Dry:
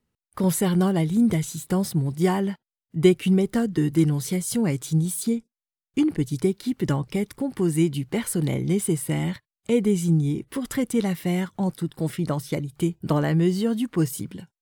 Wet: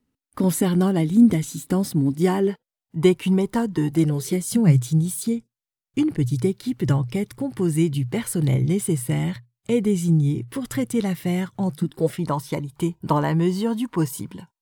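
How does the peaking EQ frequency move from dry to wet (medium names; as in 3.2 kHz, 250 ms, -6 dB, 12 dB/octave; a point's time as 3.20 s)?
peaking EQ +15 dB 0.29 oct
2.27 s 270 Hz
2.99 s 960 Hz
3.81 s 960 Hz
4.82 s 120 Hz
11.70 s 120 Hz
12.22 s 960 Hz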